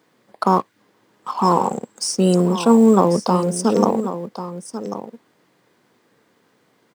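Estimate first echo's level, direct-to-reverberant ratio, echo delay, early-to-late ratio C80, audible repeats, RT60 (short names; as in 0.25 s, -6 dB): -11.5 dB, none, 1.092 s, none, 1, none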